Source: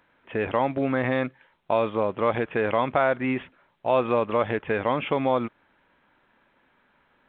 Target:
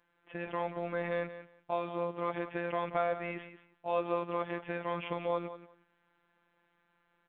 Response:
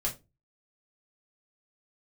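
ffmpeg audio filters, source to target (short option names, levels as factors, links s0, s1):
-af "afftfilt=real='hypot(re,im)*cos(PI*b)':imag='0':win_size=1024:overlap=0.75,aecho=1:1:180|360:0.224|0.0358,volume=0.422"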